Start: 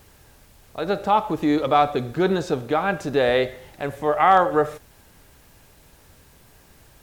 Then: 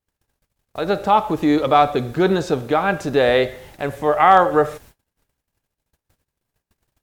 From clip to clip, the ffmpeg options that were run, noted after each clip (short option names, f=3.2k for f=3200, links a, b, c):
-af "agate=range=-38dB:threshold=-47dB:ratio=16:detection=peak,volume=3.5dB"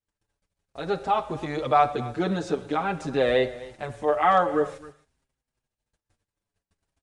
-filter_complex "[0:a]aecho=1:1:265:0.112,aresample=22050,aresample=44100,asplit=2[a][b];[b]adelay=6.4,afreqshift=-0.49[c];[a][c]amix=inputs=2:normalize=1,volume=-4.5dB"